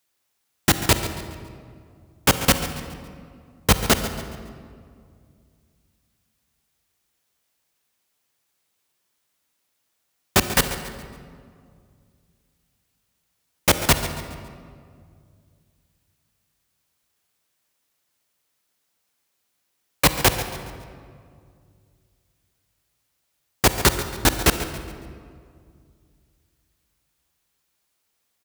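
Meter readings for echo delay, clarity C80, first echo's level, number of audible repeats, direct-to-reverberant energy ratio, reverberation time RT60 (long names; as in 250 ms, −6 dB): 139 ms, 9.0 dB, −13.5 dB, 3, 8.0 dB, 2.2 s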